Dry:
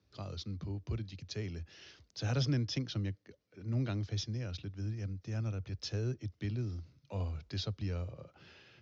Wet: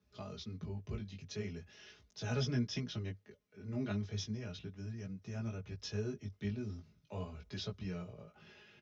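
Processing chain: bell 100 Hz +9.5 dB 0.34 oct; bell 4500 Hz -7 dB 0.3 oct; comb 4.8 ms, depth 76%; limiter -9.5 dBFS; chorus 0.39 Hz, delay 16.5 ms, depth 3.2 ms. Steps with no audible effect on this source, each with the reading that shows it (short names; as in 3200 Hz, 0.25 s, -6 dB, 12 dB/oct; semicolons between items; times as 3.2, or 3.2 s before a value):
limiter -9.5 dBFS: input peak -19.5 dBFS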